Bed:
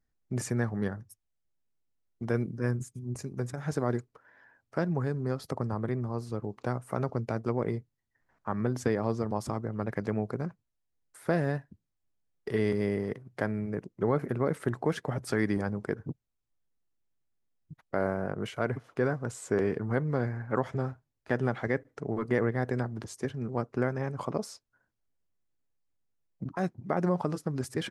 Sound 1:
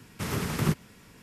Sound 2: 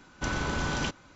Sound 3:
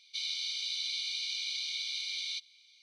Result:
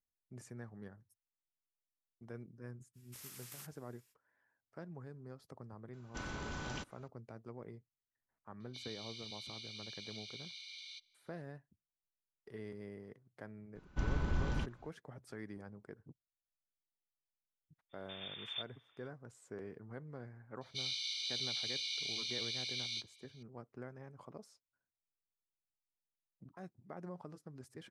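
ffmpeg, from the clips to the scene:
-filter_complex "[1:a]asplit=2[a][b];[2:a]asplit=2[c][d];[3:a]asplit=2[e][f];[0:a]volume=-19.5dB[g];[a]aderivative[h];[e]highshelf=f=2.2k:g=-8.5[i];[d]aemphasis=mode=reproduction:type=bsi[j];[b]lowpass=f=3.1k:t=q:w=0.5098,lowpass=f=3.1k:t=q:w=0.6013,lowpass=f=3.1k:t=q:w=0.9,lowpass=f=3.1k:t=q:w=2.563,afreqshift=-3700[k];[f]flanger=delay=15.5:depth=2.7:speed=2.4[l];[h]atrim=end=1.22,asetpts=PTS-STARTPTS,volume=-12dB,afade=t=in:d=0.05,afade=t=out:st=1.17:d=0.05,adelay=2930[m];[c]atrim=end=1.15,asetpts=PTS-STARTPTS,volume=-13dB,afade=t=in:d=0.004:c=hsin,afade=t=out:st=1.146:d=0.004:c=hsin,adelay=261513S[n];[i]atrim=end=2.82,asetpts=PTS-STARTPTS,volume=-7.5dB,afade=t=in:d=0.004:c=hsin,afade=t=out:st=2.816:d=0.004:c=hsin,adelay=8600[o];[j]atrim=end=1.15,asetpts=PTS-STARTPTS,volume=-12.5dB,afade=t=in:d=0.004:c=hsin,afade=t=out:st=1.146:d=0.004:c=hsin,adelay=13750[p];[k]atrim=end=1.22,asetpts=PTS-STARTPTS,volume=-18dB,afade=t=in:d=0.05,afade=t=out:st=1.17:d=0.05,adelay=17890[q];[l]atrim=end=2.82,asetpts=PTS-STARTPTS,volume=-1dB,afade=t=in:d=0.004:c=hsin,afade=t=out:st=2.816:d=0.004:c=hsin,adelay=20610[r];[g][m][n][o][p][q][r]amix=inputs=7:normalize=0"

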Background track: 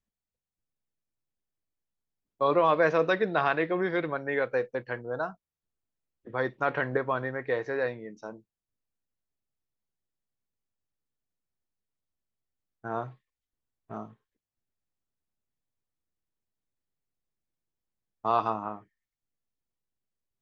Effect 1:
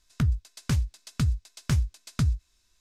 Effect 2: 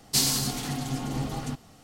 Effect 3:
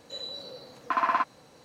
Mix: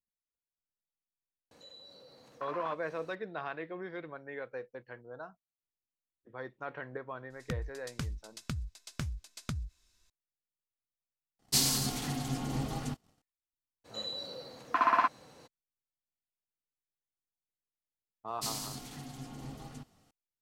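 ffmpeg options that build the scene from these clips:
-filter_complex "[3:a]asplit=2[a][b];[2:a]asplit=2[c][d];[0:a]volume=-13.5dB[e];[a]acompressor=mode=upward:threshold=-32dB:ratio=2.5:attack=3.2:release=140:knee=2.83:detection=peak[f];[1:a]acompressor=threshold=-36dB:ratio=5:attack=41:release=30:knee=1:detection=rms[g];[c]agate=range=-18dB:threshold=-49dB:ratio=3:release=21:detection=rms[h];[e]asplit=2[i][j];[i]atrim=end=11.394[k];[h]atrim=end=1.83,asetpts=PTS-STARTPTS,volume=-4dB[l];[j]atrim=start=13.216[m];[f]atrim=end=1.64,asetpts=PTS-STARTPTS,volume=-16.5dB,afade=t=in:d=0.004:c=hsin,afade=t=out:st=1.636:d=0.004:c=hsin,adelay=1510[n];[g]atrim=end=2.8,asetpts=PTS-STARTPTS,volume=-2.5dB,afade=t=in:d=0.004:c=hsin,afade=t=out:st=2.796:d=0.004:c=hsin,adelay=321930S[o];[b]atrim=end=1.64,asetpts=PTS-STARTPTS,volume=-1dB,afade=t=in:d=0.02,afade=t=out:st=1.62:d=0.02,adelay=13840[p];[d]atrim=end=1.83,asetpts=PTS-STARTPTS,volume=-14dB,afade=t=in:d=0.004:c=hsin,afade=t=out:st=1.826:d=0.004:c=hsin,adelay=806148S[q];[k][l]acrossfade=d=0.004:c1=hsin:c2=hsin[r];[r][m]acrossfade=d=0.004:c1=hsin:c2=hsin[s];[s][n][o][p][q]amix=inputs=5:normalize=0"

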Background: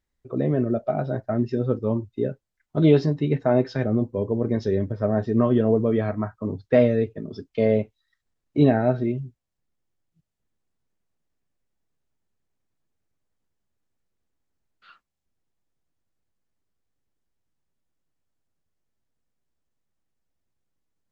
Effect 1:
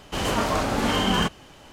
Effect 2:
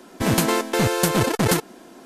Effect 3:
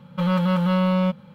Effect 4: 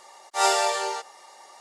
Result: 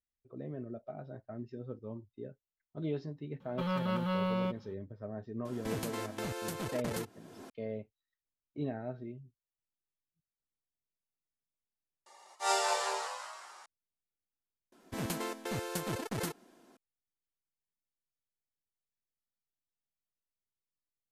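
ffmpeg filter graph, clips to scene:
-filter_complex "[2:a]asplit=2[a][b];[0:a]volume=-19.5dB[c];[3:a]equalizer=f=150:t=o:w=0.77:g=-6.5[d];[a]acompressor=threshold=-32dB:ratio=3:attack=1.3:release=625:knee=1:detection=peak[e];[4:a]asplit=7[f][g][h][i][j][k][l];[g]adelay=193,afreqshift=120,volume=-7.5dB[m];[h]adelay=386,afreqshift=240,volume=-13.5dB[n];[i]adelay=579,afreqshift=360,volume=-19.5dB[o];[j]adelay=772,afreqshift=480,volume=-25.6dB[p];[k]adelay=965,afreqshift=600,volume=-31.6dB[q];[l]adelay=1158,afreqshift=720,volume=-37.6dB[r];[f][m][n][o][p][q][r]amix=inputs=7:normalize=0[s];[c]asplit=3[t][u][v];[t]atrim=end=12.064[w];[s]atrim=end=1.6,asetpts=PTS-STARTPTS,volume=-9dB[x];[u]atrim=start=13.656:end=14.724[y];[b]atrim=end=2.05,asetpts=PTS-STARTPTS,volume=-17dB[z];[v]atrim=start=16.766[aa];[d]atrim=end=1.34,asetpts=PTS-STARTPTS,volume=-9.5dB,afade=t=in:d=0.004:c=hsin,afade=t=out:st=1.336:d=0.004:c=hsin,adelay=3400[ab];[e]atrim=end=2.05,asetpts=PTS-STARTPTS,volume=-5dB,afade=t=in:d=0.004:c=hsin,afade=t=out:st=2.046:d=0.004:c=hsin,adelay=240345S[ac];[w][x]acrossfade=d=0.004:c1=hsin:c2=hsin[ad];[ad][y]acrossfade=d=0.004:c1=hsin:c2=hsin[ae];[ae][z]acrossfade=d=0.004:c1=hsin:c2=hsin[af];[af][aa]acrossfade=d=0.004:c1=hsin:c2=hsin[ag];[ag][ab][ac]amix=inputs=3:normalize=0"

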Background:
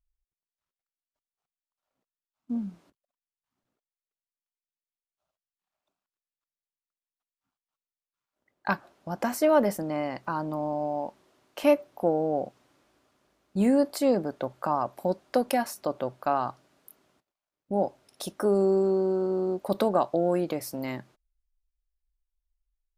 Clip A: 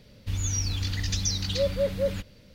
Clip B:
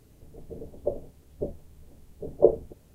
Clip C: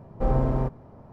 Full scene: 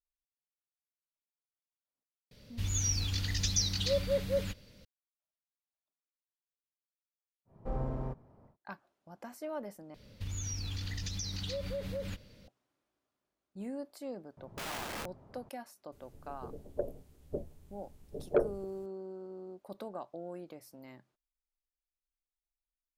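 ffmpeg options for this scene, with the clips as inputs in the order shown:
-filter_complex "[1:a]asplit=2[a][b];[3:a]asplit=2[c][d];[0:a]volume=-18.5dB[e];[a]highshelf=f=3.3k:g=4.5[f];[b]acompressor=threshold=-30dB:ratio=6:attack=3.2:release=140:knee=1:detection=peak[g];[d]aeval=exprs='(mod(21.1*val(0)+1,2)-1)/21.1':c=same[h];[2:a]asoftclip=type=tanh:threshold=-11.5dB[i];[e]asplit=2[j][k];[j]atrim=end=9.944[l];[g]atrim=end=2.54,asetpts=PTS-STARTPTS,volume=-4dB[m];[k]atrim=start=12.476[n];[f]atrim=end=2.54,asetpts=PTS-STARTPTS,volume=-5dB,afade=t=in:d=0.004:c=hsin,afade=t=out:st=2.536:d=0.004:c=hsin,adelay=2310[o];[c]atrim=end=1.12,asetpts=PTS-STARTPTS,volume=-12.5dB,afade=t=in:d=0.1,afade=t=out:st=1.02:d=0.1,adelay=7450[p];[h]atrim=end=1.12,asetpts=PTS-STARTPTS,volume=-9dB,afade=t=in:d=0.004:c=hsin,afade=t=out:st=1.116:d=0.004:c=hsin,adelay=14370[q];[i]atrim=end=2.94,asetpts=PTS-STARTPTS,volume=-5.5dB,afade=t=in:d=0.004:c=hsin,afade=t=out:st=2.936:d=0.004:c=hsin,adelay=15920[r];[l][m]acrossfade=d=0.004:c1=hsin:c2=hsin[s];[s][n]acrossfade=d=0.004:c1=hsin:c2=hsin[t];[t][o][p][q][r]amix=inputs=5:normalize=0"

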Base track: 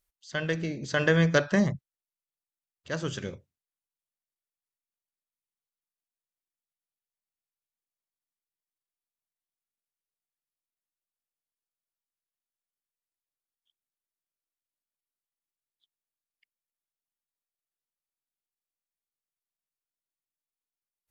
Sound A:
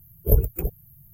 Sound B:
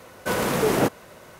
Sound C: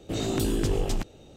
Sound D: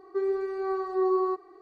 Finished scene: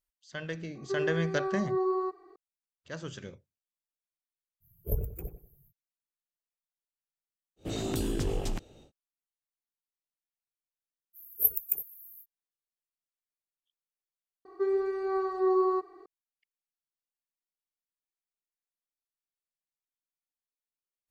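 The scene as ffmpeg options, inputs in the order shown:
-filter_complex "[4:a]asplit=2[a][b];[1:a]asplit=2[c][d];[0:a]volume=-8dB[e];[c]asplit=2[f][g];[g]adelay=93,lowpass=f=1.6k:p=1,volume=-10dB,asplit=2[h][i];[i]adelay=93,lowpass=f=1.6k:p=1,volume=0.33,asplit=2[j][k];[k]adelay=93,lowpass=f=1.6k:p=1,volume=0.33,asplit=2[l][m];[m]adelay=93,lowpass=f=1.6k:p=1,volume=0.33[n];[f][h][j][l][n]amix=inputs=5:normalize=0[o];[d]aderivative[p];[e]asplit=2[q][r];[q]atrim=end=14.454[s];[b]atrim=end=1.61,asetpts=PTS-STARTPTS,volume=-0.5dB[t];[r]atrim=start=16.056[u];[a]atrim=end=1.61,asetpts=PTS-STARTPTS,volume=-4dB,afade=t=in:d=0.004:c=hsin,afade=t=out:st=1.606:d=0.004:c=hsin,adelay=750[v];[o]atrim=end=1.13,asetpts=PTS-STARTPTS,volume=-13dB,afade=t=in:d=0.05,afade=t=out:st=1.08:d=0.05,adelay=4600[w];[3:a]atrim=end=1.36,asetpts=PTS-STARTPTS,volume=-5dB,afade=t=in:d=0.1,afade=t=out:st=1.26:d=0.1,adelay=7560[x];[p]atrim=end=1.13,asetpts=PTS-STARTPTS,afade=t=in:d=0.05,afade=t=out:st=1.08:d=0.05,adelay=11130[y];[s][t]acrossfade=d=0.004:c1=hsin:c2=hsin[z];[z][u]acrossfade=d=0.004:c1=hsin:c2=hsin[aa];[aa][v][w][x][y]amix=inputs=5:normalize=0"

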